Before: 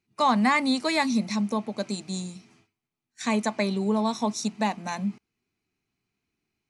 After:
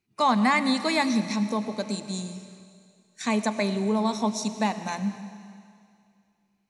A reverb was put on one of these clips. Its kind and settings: digital reverb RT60 2.3 s, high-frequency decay 1×, pre-delay 55 ms, DRR 11 dB

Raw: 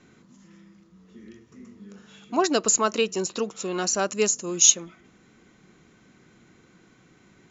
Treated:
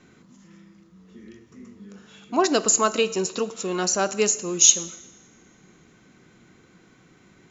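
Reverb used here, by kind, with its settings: two-slope reverb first 0.91 s, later 3 s, from -24 dB, DRR 13 dB; gain +1.5 dB

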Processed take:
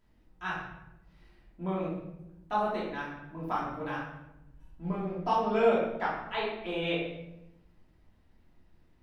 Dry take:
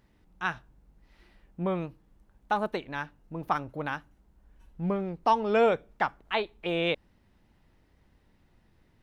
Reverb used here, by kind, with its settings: shoebox room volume 300 m³, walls mixed, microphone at 2.9 m; gain -11 dB

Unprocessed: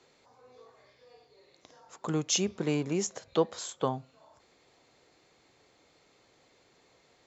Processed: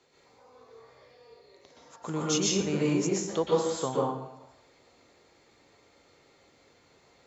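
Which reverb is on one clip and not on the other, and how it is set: plate-style reverb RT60 0.78 s, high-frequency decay 0.65×, pre-delay 0.11 s, DRR -5 dB; gain -3 dB

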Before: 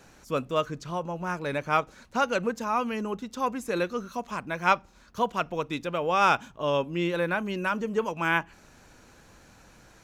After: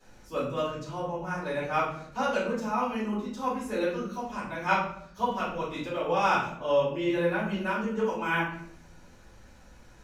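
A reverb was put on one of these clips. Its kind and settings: shoebox room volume 110 m³, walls mixed, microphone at 4.1 m; gain -16 dB

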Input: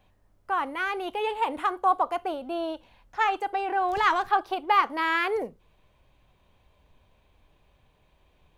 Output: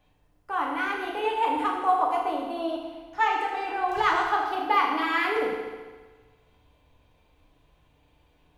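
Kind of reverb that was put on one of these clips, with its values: FDN reverb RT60 1.4 s, low-frequency decay 1×, high-frequency decay 0.95×, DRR -2.5 dB; gain -3.5 dB

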